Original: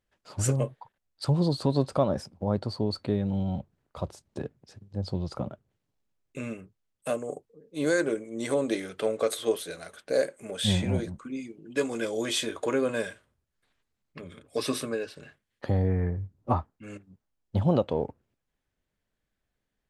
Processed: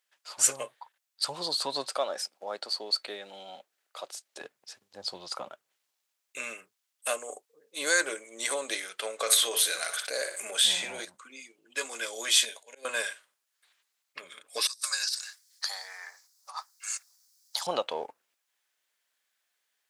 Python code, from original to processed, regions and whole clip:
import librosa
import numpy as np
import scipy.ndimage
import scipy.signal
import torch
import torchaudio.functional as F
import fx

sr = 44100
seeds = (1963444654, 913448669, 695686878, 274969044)

y = fx.chain(x, sr, fx.highpass(hz=310.0, slope=12),
    fx.peak_eq(hz=1000.0, db=-7.5, octaves=0.4), at=(1.89, 4.41))
y = fx.chain(y, sr, fx.room_flutter(wall_m=10.5, rt60_s=0.26),
    fx.env_flatten(amount_pct=50), at=(9.2, 11.05))
y = fx.chain(y, sr, fx.fixed_phaser(hz=330.0, stages=6),
    fx.auto_swell(attack_ms=338.0), at=(12.45, 12.85))
y = fx.chain(y, sr, fx.bessel_highpass(hz=1300.0, order=6),
    fx.high_shelf_res(hz=3800.0, db=9.5, q=3.0),
    fx.over_compress(threshold_db=-40.0, ratio=-0.5), at=(14.67, 17.67))
y = scipy.signal.sosfilt(scipy.signal.butter(2, 890.0, 'highpass', fs=sr, output='sos'), y)
y = fx.high_shelf(y, sr, hz=2500.0, db=8.5)
y = fx.rider(y, sr, range_db=4, speed_s=2.0)